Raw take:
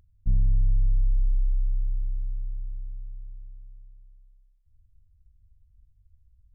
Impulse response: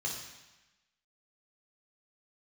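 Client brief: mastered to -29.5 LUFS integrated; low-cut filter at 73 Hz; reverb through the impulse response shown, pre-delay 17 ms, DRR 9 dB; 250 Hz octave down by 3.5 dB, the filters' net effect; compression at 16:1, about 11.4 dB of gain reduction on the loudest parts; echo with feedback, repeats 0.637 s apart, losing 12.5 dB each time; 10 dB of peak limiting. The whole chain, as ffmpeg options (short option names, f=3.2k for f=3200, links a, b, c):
-filter_complex "[0:a]highpass=73,equalizer=f=250:t=o:g=-7,acompressor=threshold=-39dB:ratio=16,alimiter=level_in=16dB:limit=-24dB:level=0:latency=1,volume=-16dB,aecho=1:1:637|1274|1911:0.237|0.0569|0.0137,asplit=2[a][b];[1:a]atrim=start_sample=2205,adelay=17[c];[b][c]afir=irnorm=-1:irlink=0,volume=-11.5dB[d];[a][d]amix=inputs=2:normalize=0,volume=21dB"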